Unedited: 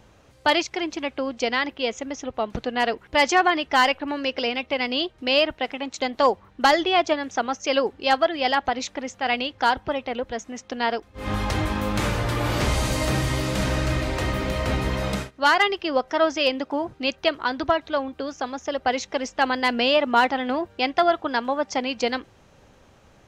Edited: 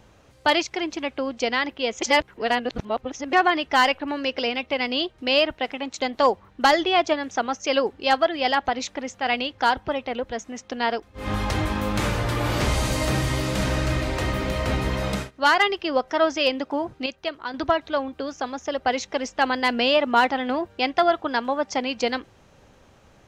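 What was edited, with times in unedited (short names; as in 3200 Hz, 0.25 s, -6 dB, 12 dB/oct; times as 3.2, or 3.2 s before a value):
2.02–3.33 reverse
17.06–17.54 gain -7 dB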